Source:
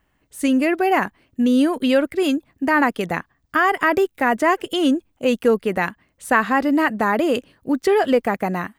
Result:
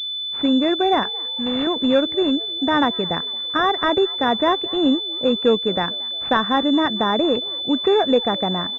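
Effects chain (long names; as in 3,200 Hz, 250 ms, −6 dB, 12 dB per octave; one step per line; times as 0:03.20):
0:01.03–0:01.67: spectral tilt +4.5 dB per octave
echo with shifted repeats 225 ms, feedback 54%, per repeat +66 Hz, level −23 dB
switching amplifier with a slow clock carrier 3,500 Hz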